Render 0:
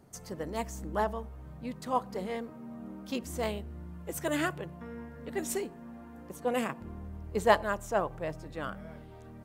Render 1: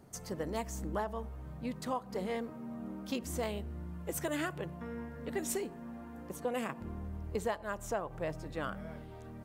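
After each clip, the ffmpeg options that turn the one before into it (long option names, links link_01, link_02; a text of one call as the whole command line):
ffmpeg -i in.wav -af "acompressor=threshold=-32dB:ratio=16,volume=1dB" out.wav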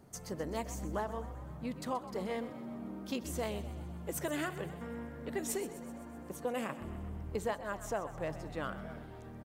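ffmpeg -i in.wav -filter_complex "[0:a]asplit=8[link_01][link_02][link_03][link_04][link_05][link_06][link_07][link_08];[link_02]adelay=127,afreqshift=51,volume=-14dB[link_09];[link_03]adelay=254,afreqshift=102,volume=-18.3dB[link_10];[link_04]adelay=381,afreqshift=153,volume=-22.6dB[link_11];[link_05]adelay=508,afreqshift=204,volume=-26.9dB[link_12];[link_06]adelay=635,afreqshift=255,volume=-31.2dB[link_13];[link_07]adelay=762,afreqshift=306,volume=-35.5dB[link_14];[link_08]adelay=889,afreqshift=357,volume=-39.8dB[link_15];[link_01][link_09][link_10][link_11][link_12][link_13][link_14][link_15]amix=inputs=8:normalize=0,volume=-1dB" out.wav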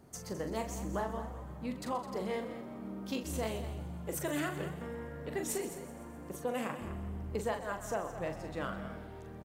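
ffmpeg -i in.wav -af "aecho=1:1:40.82|209.9:0.447|0.251" out.wav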